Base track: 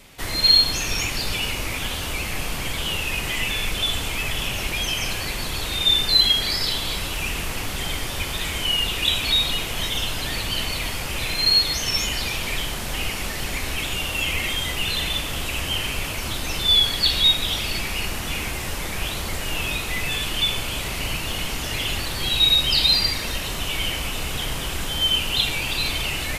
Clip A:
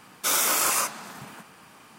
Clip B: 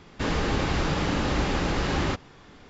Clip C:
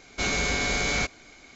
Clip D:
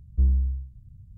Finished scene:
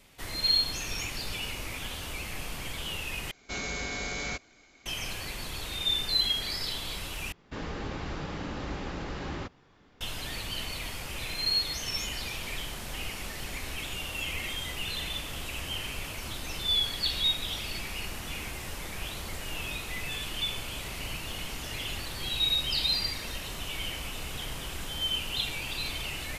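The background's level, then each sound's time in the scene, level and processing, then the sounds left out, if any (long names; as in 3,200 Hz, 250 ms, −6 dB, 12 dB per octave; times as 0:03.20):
base track −10 dB
0:03.31: overwrite with C −8.5 dB
0:07.32: overwrite with B −10.5 dB + high-shelf EQ 6,400 Hz −5.5 dB
not used: A, D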